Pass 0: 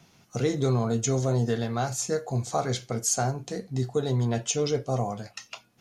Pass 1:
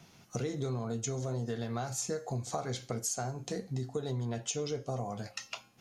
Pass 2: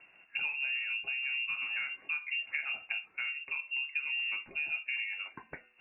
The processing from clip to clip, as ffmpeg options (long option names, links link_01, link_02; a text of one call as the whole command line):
ffmpeg -i in.wav -af "acompressor=threshold=-32dB:ratio=6,bandreject=frequency=267.3:width_type=h:width=4,bandreject=frequency=534.6:width_type=h:width=4,bandreject=frequency=801.9:width_type=h:width=4,bandreject=frequency=1069.2:width_type=h:width=4,bandreject=frequency=1336.5:width_type=h:width=4,bandreject=frequency=1603.8:width_type=h:width=4,bandreject=frequency=1871.1:width_type=h:width=4,bandreject=frequency=2138.4:width_type=h:width=4,bandreject=frequency=2405.7:width_type=h:width=4,bandreject=frequency=2673:width_type=h:width=4,bandreject=frequency=2940.3:width_type=h:width=4,bandreject=frequency=3207.6:width_type=h:width=4,bandreject=frequency=3474.9:width_type=h:width=4,bandreject=frequency=3742.2:width_type=h:width=4,bandreject=frequency=4009.5:width_type=h:width=4,bandreject=frequency=4276.8:width_type=h:width=4,bandreject=frequency=4544.1:width_type=h:width=4,bandreject=frequency=4811.4:width_type=h:width=4,bandreject=frequency=5078.7:width_type=h:width=4,bandreject=frequency=5346:width_type=h:width=4,bandreject=frequency=5613.3:width_type=h:width=4,bandreject=frequency=5880.6:width_type=h:width=4,bandreject=frequency=6147.9:width_type=h:width=4,bandreject=frequency=6415.2:width_type=h:width=4,bandreject=frequency=6682.5:width_type=h:width=4,bandreject=frequency=6949.8:width_type=h:width=4,bandreject=frequency=7217.1:width_type=h:width=4,bandreject=frequency=7484.4:width_type=h:width=4,bandreject=frequency=7751.7:width_type=h:width=4" out.wav
ffmpeg -i in.wav -af "highpass=59,lowpass=frequency=2500:width_type=q:width=0.5098,lowpass=frequency=2500:width_type=q:width=0.6013,lowpass=frequency=2500:width_type=q:width=0.9,lowpass=frequency=2500:width_type=q:width=2.563,afreqshift=-2900" out.wav